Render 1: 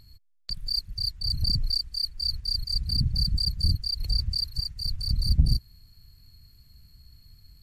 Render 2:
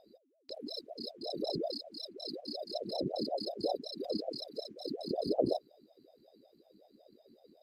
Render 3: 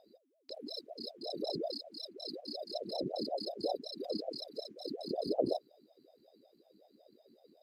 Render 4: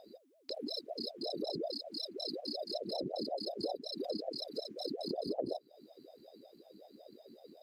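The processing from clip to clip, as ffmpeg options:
ffmpeg -i in.wav -af "highshelf=frequency=4700:gain=-10,aeval=exprs='val(0)*sin(2*PI*460*n/s+460*0.45/5.4*sin(2*PI*5.4*n/s))':channel_layout=same,volume=-8dB" out.wav
ffmpeg -i in.wav -af "lowshelf=frequency=120:gain=-9,volume=-1dB" out.wav
ffmpeg -i in.wav -af "acompressor=threshold=-45dB:ratio=3,volume=7.5dB" out.wav

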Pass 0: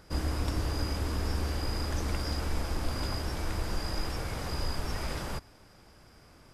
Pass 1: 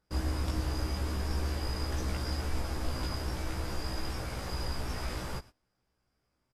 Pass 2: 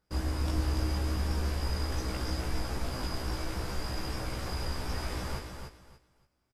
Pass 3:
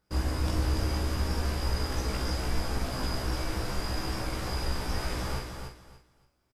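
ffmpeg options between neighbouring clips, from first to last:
ffmpeg -i in.wav -filter_complex "[0:a]asplit=2[link_01][link_02];[link_02]adelay=16,volume=-2dB[link_03];[link_01][link_03]amix=inputs=2:normalize=0,agate=range=-21dB:threshold=-44dB:ratio=16:detection=peak,volume=-4dB" out.wav
ffmpeg -i in.wav -af "aecho=1:1:288|576|864:0.501|0.115|0.0265" out.wav
ffmpeg -i in.wav -filter_complex "[0:a]asplit=2[link_01][link_02];[link_02]adelay=46,volume=-7dB[link_03];[link_01][link_03]amix=inputs=2:normalize=0,volume=2.5dB" out.wav

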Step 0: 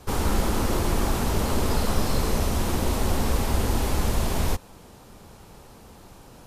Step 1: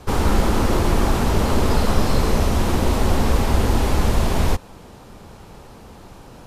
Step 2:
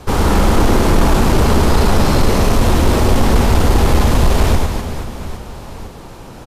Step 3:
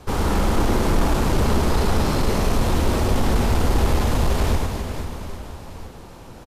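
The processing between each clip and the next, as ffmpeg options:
ffmpeg -i in.wav -af "highshelf=frequency=6300:gain=-8.5,volume=6dB" out.wav
ffmpeg -i in.wav -af "aecho=1:1:100|250|475|812.5|1319:0.631|0.398|0.251|0.158|0.1,acontrast=66,volume=-1dB" out.wav
ffmpeg -i in.wav -af "aecho=1:1:495|990|1485|1980:0.266|0.0905|0.0308|0.0105,volume=-7.5dB" out.wav

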